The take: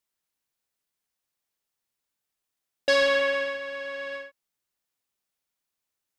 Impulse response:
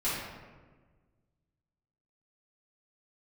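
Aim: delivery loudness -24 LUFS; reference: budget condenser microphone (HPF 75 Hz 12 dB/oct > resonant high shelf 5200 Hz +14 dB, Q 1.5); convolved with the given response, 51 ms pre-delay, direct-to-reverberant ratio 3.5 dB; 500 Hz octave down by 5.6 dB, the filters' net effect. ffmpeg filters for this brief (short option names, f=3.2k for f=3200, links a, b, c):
-filter_complex "[0:a]equalizer=f=500:t=o:g=-6,asplit=2[a][b];[1:a]atrim=start_sample=2205,adelay=51[c];[b][c]afir=irnorm=-1:irlink=0,volume=-12dB[d];[a][d]amix=inputs=2:normalize=0,highpass=75,highshelf=f=5.2k:t=q:w=1.5:g=14,volume=4dB"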